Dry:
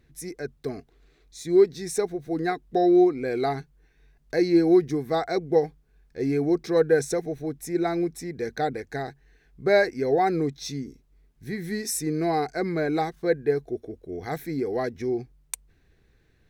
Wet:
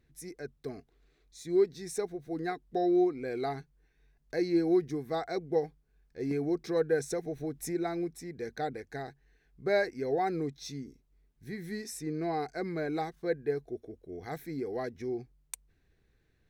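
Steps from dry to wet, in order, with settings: 6.31–7.87 upward compressor, threshold -21 dBFS; 11.84–12.4 high shelf 6400 Hz -9 dB; gain -8 dB

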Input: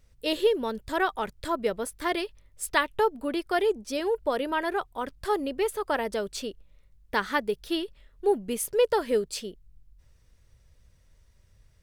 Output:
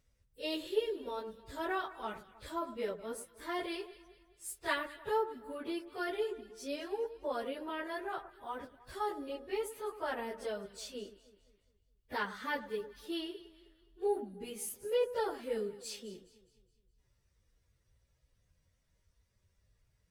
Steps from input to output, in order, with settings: HPF 45 Hz 6 dB/oct; plain phase-vocoder stretch 1.7×; on a send: echo with dull and thin repeats by turns 0.104 s, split 1500 Hz, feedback 64%, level -13 dB; on the sum: gain -8 dB

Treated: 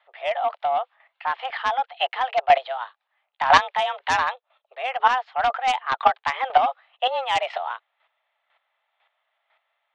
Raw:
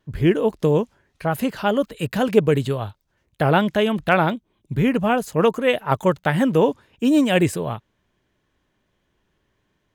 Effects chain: mistuned SSB +260 Hz 430–3300 Hz; sine folder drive 7 dB, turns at -4 dBFS; chopper 2 Hz, depth 65%, duty 15%; gain -2 dB

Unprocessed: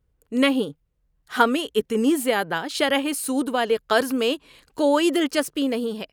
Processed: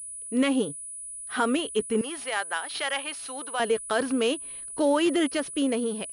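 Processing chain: limiter -12.5 dBFS, peak gain reduction 8 dB; 2.01–3.6 HPF 840 Hz 12 dB/oct; pulse-width modulation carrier 9900 Hz; gain -2 dB

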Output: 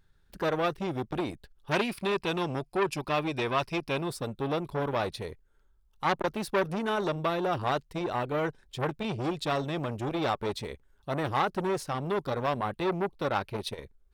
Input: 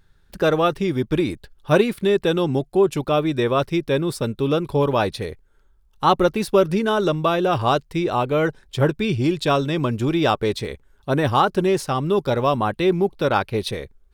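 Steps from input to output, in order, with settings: 1.71–4.08 thirty-one-band EQ 500 Hz -4 dB, 1000 Hz +9 dB, 2500 Hz +10 dB, 5000 Hz +11 dB, 10000 Hz +5 dB; core saturation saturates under 1900 Hz; gain -7.5 dB

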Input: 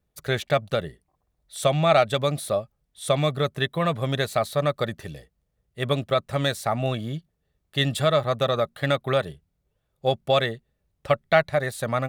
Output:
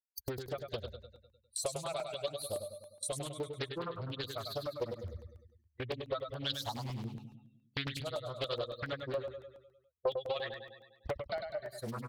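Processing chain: per-bin expansion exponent 3; gate -53 dBFS, range -19 dB; phaser 0.26 Hz, delay 2 ms, feedback 39%; compressor 16:1, threshold -51 dBFS, peak gain reduction 36 dB; thirty-one-band EQ 160 Hz -9 dB, 500 Hz +8 dB, 4000 Hz +11 dB; feedback echo 0.101 s, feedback 55%, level -6 dB; crackling interface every 0.14 s, samples 64, zero, from 0.46; Doppler distortion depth 0.72 ms; gain +13.5 dB

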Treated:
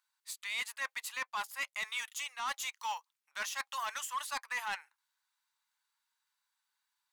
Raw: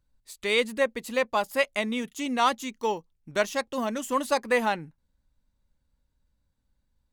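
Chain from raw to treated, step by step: steep high-pass 920 Hz 36 dB/oct; reverse; compressor 12:1, threshold -34 dBFS, peak gain reduction 15.5 dB; reverse; soft clip -33.5 dBFS, distortion -12 dB; gain +4 dB

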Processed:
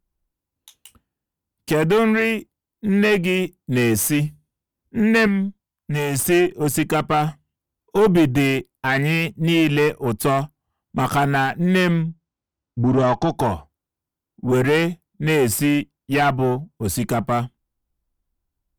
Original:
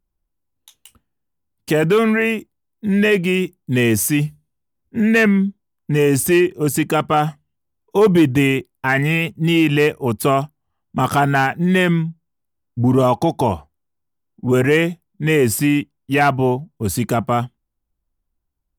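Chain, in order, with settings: one diode to ground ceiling -14.5 dBFS; 5.27–6.2 bell 360 Hz -9 dB 1.3 oct; 12.02–13.36 LPF 6900 Hz 24 dB/oct

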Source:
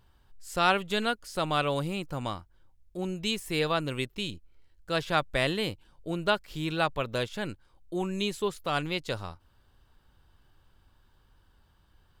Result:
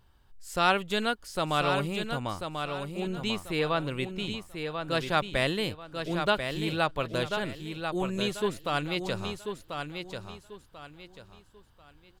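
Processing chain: 2.2–4.91 tone controls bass 0 dB, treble -7 dB; feedback echo 1.04 s, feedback 29%, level -6.5 dB

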